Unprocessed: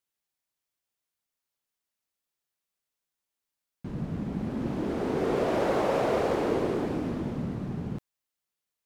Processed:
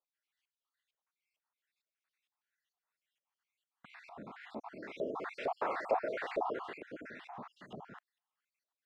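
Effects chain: random holes in the spectrogram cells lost 54%; LFO band-pass saw up 2.2 Hz 630–2900 Hz; tape noise reduction on one side only encoder only; trim +3.5 dB

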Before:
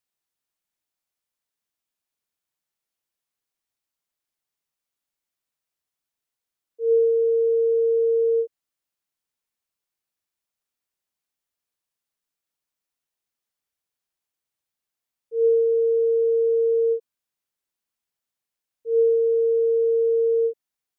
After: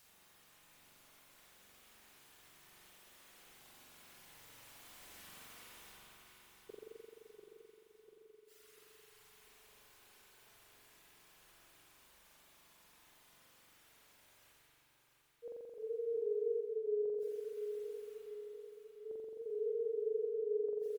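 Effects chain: Doppler pass-by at 5.30 s, 8 m/s, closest 2.5 m; reverb removal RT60 1.1 s; dynamic bell 390 Hz, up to -4 dB, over -53 dBFS, Q 0.81; reverse; upward compressor, threshold -50 dBFS; reverse; wow and flutter 110 cents; inverted gate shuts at -50 dBFS, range -38 dB; on a send: feedback delay 694 ms, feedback 52%, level -7.5 dB; on the sum: spring tank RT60 2.5 s, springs 43 ms, chirp 50 ms, DRR -5 dB; trim +11 dB

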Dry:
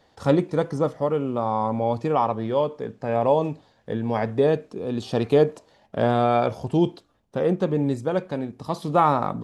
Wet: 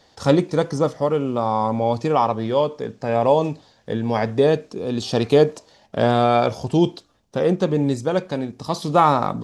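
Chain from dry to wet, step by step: peaking EQ 5.6 kHz +9 dB 1.4 oct; trim +3 dB

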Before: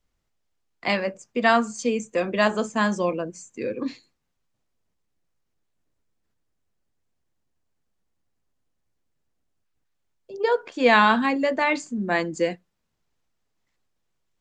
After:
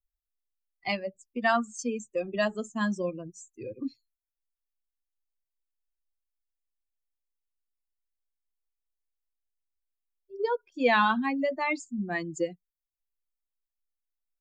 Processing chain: expander on every frequency bin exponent 2; in parallel at +1 dB: compression, threshold -34 dBFS, peak gain reduction 18 dB; on the sum: trim -5 dB

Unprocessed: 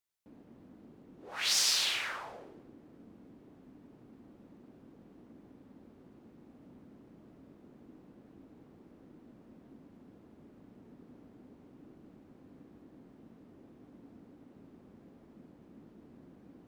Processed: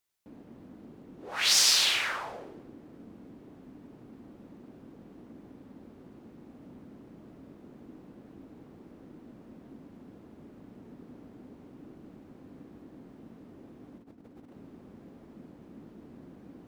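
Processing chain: 13.98–14.53 s: compressor with a negative ratio -58 dBFS, ratio -0.5; trim +6 dB

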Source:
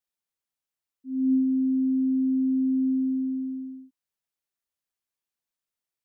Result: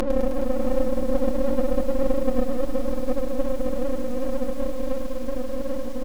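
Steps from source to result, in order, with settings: Paulstretch 7.4×, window 0.05 s, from 2.57 s; Chebyshev shaper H 2 -7 dB, 5 -29 dB, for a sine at -14 dBFS; peaking EQ 210 Hz -6.5 dB 0.59 oct; half-wave rectifier; comb 5.6 ms, depth 65%; bit-crushed delay 104 ms, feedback 80%, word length 7-bit, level -12 dB; trim +4 dB

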